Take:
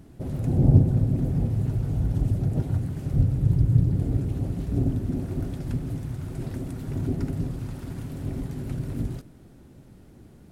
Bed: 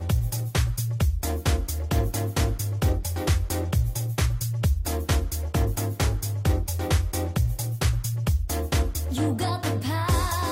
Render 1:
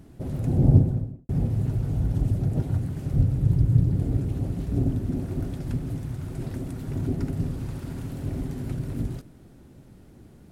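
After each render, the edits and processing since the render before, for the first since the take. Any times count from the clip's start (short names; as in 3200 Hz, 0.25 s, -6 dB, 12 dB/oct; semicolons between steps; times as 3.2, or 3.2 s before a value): 0.71–1.29 studio fade out; 7.31–8.72 flutter echo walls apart 11.7 m, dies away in 0.53 s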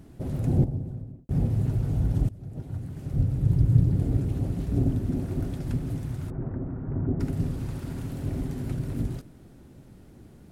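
0.64–1.31 compressor 2:1, threshold -39 dBFS; 2.29–3.7 fade in, from -21.5 dB; 6.3–7.2 LPF 1500 Hz 24 dB/oct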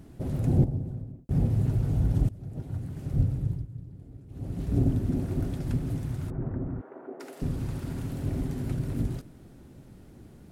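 3.21–4.74 dip -21.5 dB, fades 0.46 s; 6.81–7.42 HPF 420 Hz 24 dB/oct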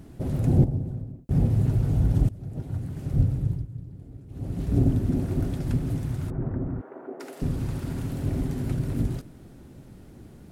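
gain +3 dB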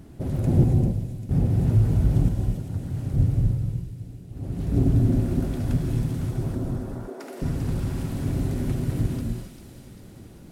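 thin delay 0.395 s, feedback 57%, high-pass 2600 Hz, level -6 dB; non-linear reverb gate 0.3 s rising, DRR 2 dB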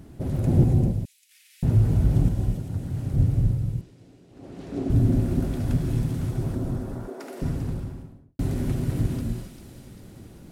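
1.05–1.63 steep high-pass 2100 Hz; 3.81–4.9 three-band isolator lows -20 dB, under 250 Hz, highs -16 dB, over 7600 Hz; 7.32–8.39 studio fade out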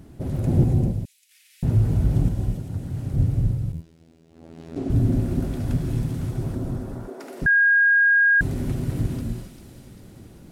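3.72–4.76 robotiser 81.8 Hz; 7.46–8.41 bleep 1630 Hz -13.5 dBFS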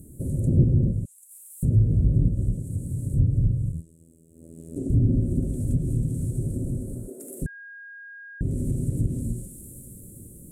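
treble ducked by the level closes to 2100 Hz, closed at -15 dBFS; EQ curve 150 Hz 0 dB, 560 Hz -4 dB, 840 Hz -29 dB, 5200 Hz -18 dB, 8100 Hz +15 dB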